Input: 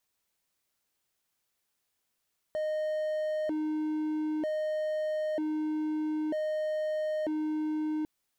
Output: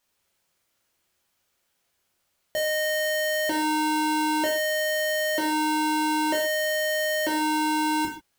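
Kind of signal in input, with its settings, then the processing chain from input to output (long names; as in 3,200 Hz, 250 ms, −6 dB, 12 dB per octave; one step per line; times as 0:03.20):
siren hi-lo 308–617 Hz 0.53 per second triangle −26.5 dBFS 5.50 s
each half-wave held at its own peak
reverb whose tail is shaped and stops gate 170 ms falling, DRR −1.5 dB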